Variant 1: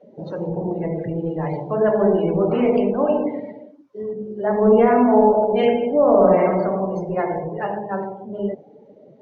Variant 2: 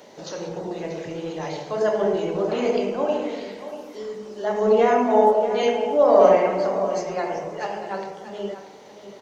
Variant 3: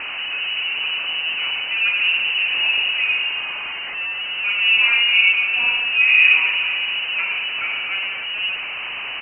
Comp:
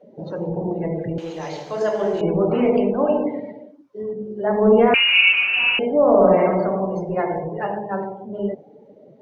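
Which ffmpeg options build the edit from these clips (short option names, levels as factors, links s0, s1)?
-filter_complex "[0:a]asplit=3[s0][s1][s2];[s0]atrim=end=1.182[s3];[1:a]atrim=start=1.178:end=2.212[s4];[s1]atrim=start=2.208:end=4.942[s5];[2:a]atrim=start=4.938:end=5.792[s6];[s2]atrim=start=5.788[s7];[s3][s4]acrossfade=d=0.004:c1=hsin:c2=hsin[s8];[s8][s5]acrossfade=d=0.004:c1=hsin:c2=hsin[s9];[s9][s6]acrossfade=d=0.004:c1=hsin:c2=hsin[s10];[s10][s7]acrossfade=d=0.004:c1=hsin:c2=hsin"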